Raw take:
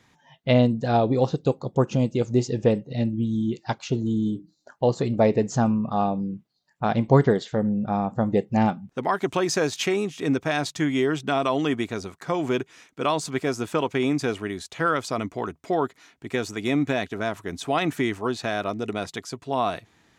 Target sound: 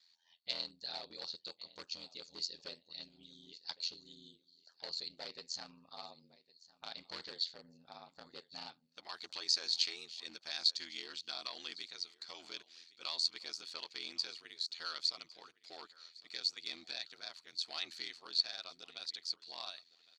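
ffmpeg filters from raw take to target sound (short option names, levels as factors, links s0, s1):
-af "aecho=1:1:1108|2216:0.0841|0.0185,asoftclip=type=hard:threshold=0.168,aeval=exprs='val(0)*sin(2*PI*42*n/s)':c=same,bandpass=f=4400:t=q:w=15:csg=0,volume=5.01"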